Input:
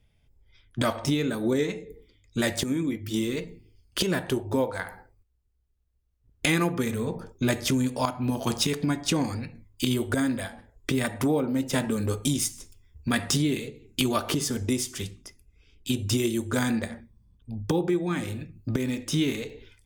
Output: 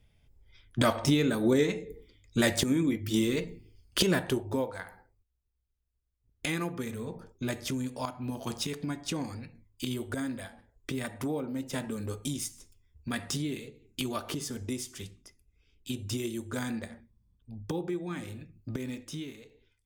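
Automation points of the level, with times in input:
0:04.09 +0.5 dB
0:04.85 −8.5 dB
0:18.95 −8.5 dB
0:19.35 −17.5 dB

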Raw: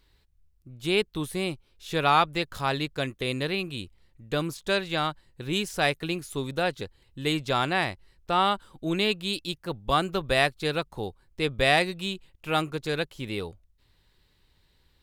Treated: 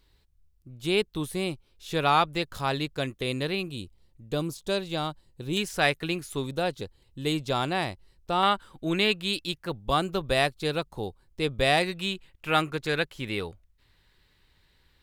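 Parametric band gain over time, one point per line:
parametric band 1,800 Hz 1.4 octaves
−2.5 dB
from 0:03.68 −10 dB
from 0:05.57 +2 dB
from 0:06.46 −6 dB
from 0:08.43 +4 dB
from 0:09.70 −3.5 dB
from 0:11.83 +5 dB

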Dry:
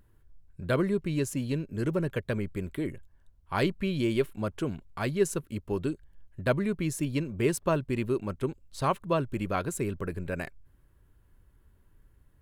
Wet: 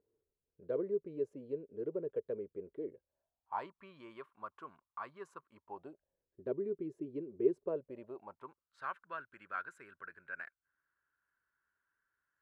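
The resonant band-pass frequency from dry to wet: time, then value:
resonant band-pass, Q 6.2
0:02.92 450 Hz
0:03.74 1,100 Hz
0:05.51 1,100 Hz
0:06.40 390 Hz
0:07.58 390 Hz
0:08.80 1,500 Hz

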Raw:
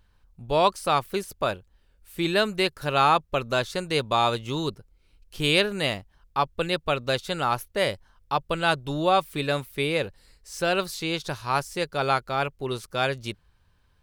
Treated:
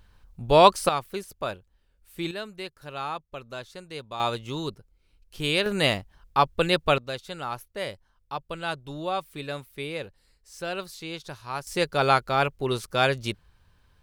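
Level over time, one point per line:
+5.5 dB
from 0:00.89 −5 dB
from 0:02.31 −13 dB
from 0:04.20 −3.5 dB
from 0:05.66 +3.5 dB
from 0:06.98 −8 dB
from 0:11.67 +3 dB

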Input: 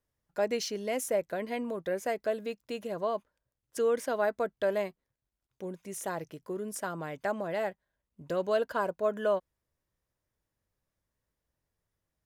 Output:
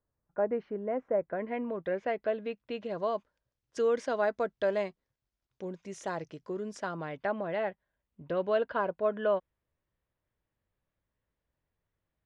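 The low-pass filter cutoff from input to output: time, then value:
low-pass filter 24 dB per octave
0:01.10 1,500 Hz
0:01.91 3,300 Hz
0:02.65 3,300 Hz
0:03.09 6,200 Hz
0:06.67 6,200 Hz
0:07.35 3,500 Hz

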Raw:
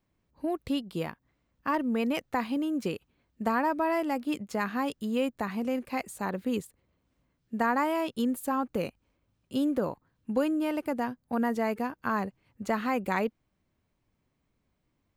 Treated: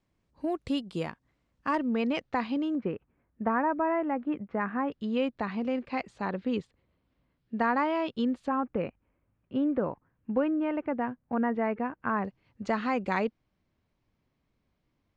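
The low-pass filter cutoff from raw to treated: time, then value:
low-pass filter 24 dB per octave
8,500 Hz
from 0:01.79 5,200 Hz
from 0:02.75 2,000 Hz
from 0:04.92 4,500 Hz
from 0:08.48 2,400 Hz
from 0:12.25 5,800 Hz

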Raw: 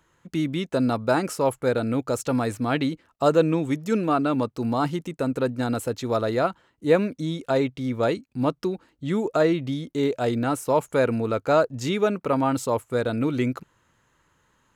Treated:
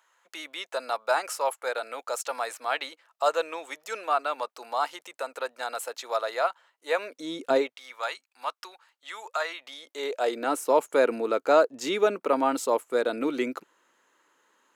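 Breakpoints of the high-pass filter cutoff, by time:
high-pass filter 24 dB per octave
0:06.97 630 Hz
0:07.52 220 Hz
0:07.78 850 Hz
0:09.49 850 Hz
0:10.60 300 Hz

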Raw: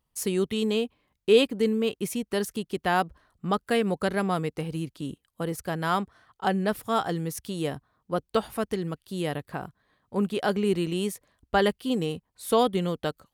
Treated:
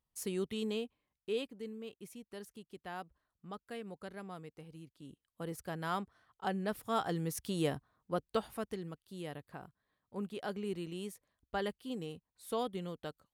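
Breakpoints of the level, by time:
0:00.69 −10.5 dB
0:01.60 −20 dB
0:04.92 −20 dB
0:05.49 −10.5 dB
0:06.62 −10.5 dB
0:07.60 −3 dB
0:09.05 −14 dB

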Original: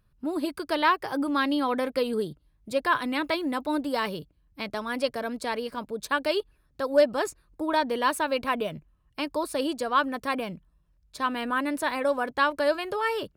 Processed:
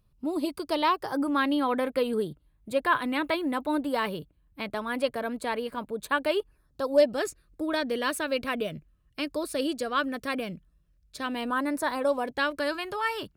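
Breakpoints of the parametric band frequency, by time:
parametric band −11.5 dB 0.51 octaves
0:00.89 1,600 Hz
0:01.42 5,400 Hz
0:06.28 5,400 Hz
0:07.23 920 Hz
0:11.19 920 Hz
0:11.73 3,400 Hz
0:12.83 510 Hz

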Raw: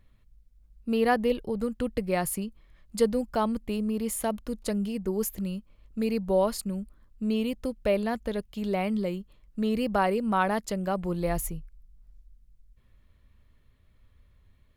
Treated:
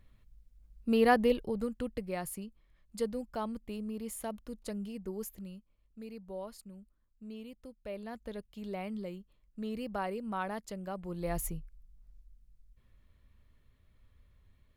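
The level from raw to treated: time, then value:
0:01.23 −1 dB
0:02.15 −10 dB
0:05.07 −10 dB
0:06.05 −18 dB
0:07.81 −18 dB
0:08.29 −11 dB
0:11.05 −11 dB
0:11.47 −3.5 dB

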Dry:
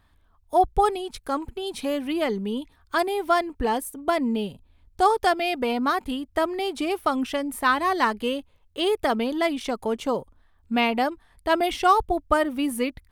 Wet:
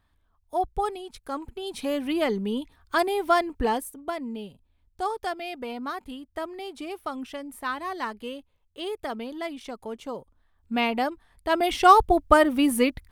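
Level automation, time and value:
0:01.16 −7 dB
0:02.07 0 dB
0:03.66 0 dB
0:04.18 −9.5 dB
0:10.14 −9.5 dB
0:10.83 −2.5 dB
0:11.51 −2.5 dB
0:11.92 +4 dB

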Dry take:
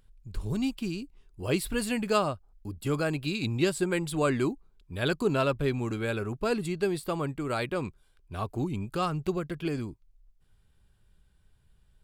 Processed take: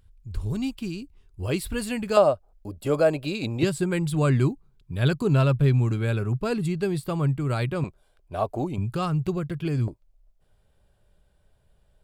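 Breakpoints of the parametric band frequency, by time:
parametric band +14.5 dB 0.85 octaves
74 Hz
from 0:02.17 590 Hz
from 0:03.63 130 Hz
from 0:07.84 630 Hz
from 0:08.78 120 Hz
from 0:09.88 600 Hz

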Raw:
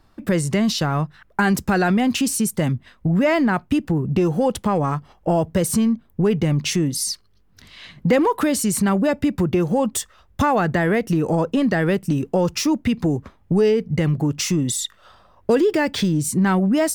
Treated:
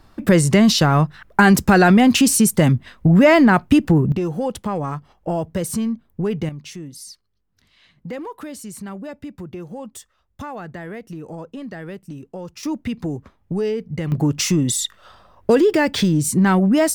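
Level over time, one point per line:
+6 dB
from 0:04.12 −4 dB
from 0:06.49 −14 dB
from 0:12.63 −5.5 dB
from 0:14.12 +2.5 dB

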